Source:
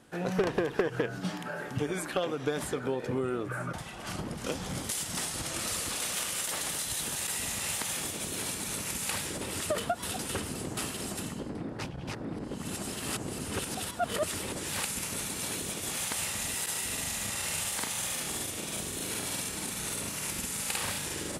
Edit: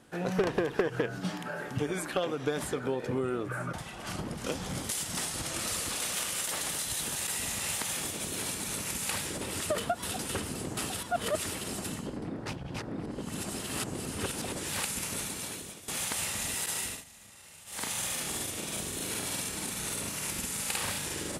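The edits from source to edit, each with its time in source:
0:13.78–0:14.45: move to 0:10.90
0:15.19–0:15.88: fade out, to −16 dB
0:16.83–0:17.87: duck −19 dB, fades 0.21 s

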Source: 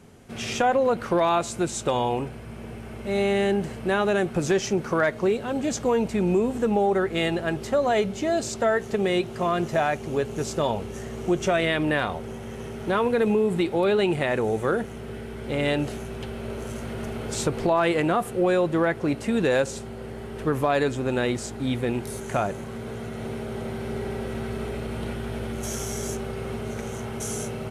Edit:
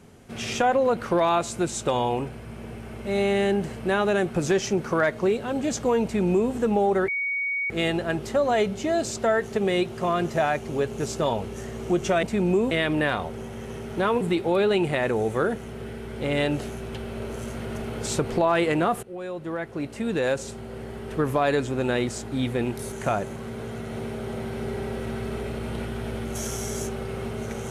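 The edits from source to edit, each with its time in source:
0:06.04–0:06.52: duplicate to 0:11.61
0:07.08: insert tone 2,240 Hz −24 dBFS 0.62 s
0:13.11–0:13.49: remove
0:18.31–0:20.08: fade in, from −18 dB

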